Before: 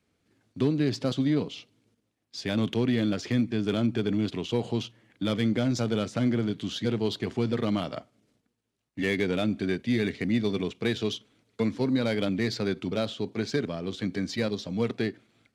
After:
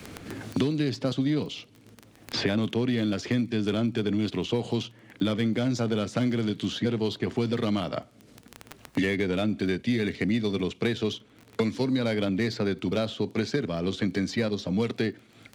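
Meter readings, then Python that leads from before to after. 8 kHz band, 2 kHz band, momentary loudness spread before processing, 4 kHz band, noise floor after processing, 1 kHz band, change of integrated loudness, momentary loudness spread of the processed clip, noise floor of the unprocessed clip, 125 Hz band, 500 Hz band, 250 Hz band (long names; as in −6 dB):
+0.5 dB, +1.5 dB, 7 LU, +1.5 dB, −56 dBFS, +1.5 dB, +0.5 dB, 6 LU, −77 dBFS, +0.5 dB, +1.0 dB, +0.5 dB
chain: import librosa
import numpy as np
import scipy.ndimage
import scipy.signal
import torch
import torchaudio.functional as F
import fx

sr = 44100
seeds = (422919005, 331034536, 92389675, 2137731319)

y = fx.dmg_crackle(x, sr, seeds[0], per_s=19.0, level_db=-45.0)
y = fx.band_squash(y, sr, depth_pct=100)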